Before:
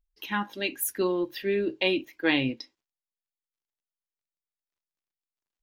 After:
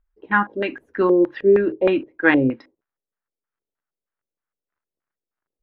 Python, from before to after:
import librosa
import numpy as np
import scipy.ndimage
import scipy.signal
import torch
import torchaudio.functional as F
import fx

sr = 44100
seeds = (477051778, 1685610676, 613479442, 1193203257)

y = fx.block_float(x, sr, bits=7)
y = fx.filter_lfo_lowpass(y, sr, shape='square', hz=3.2, low_hz=470.0, high_hz=1500.0, q=2.4)
y = y * 10.0 ** (7.0 / 20.0)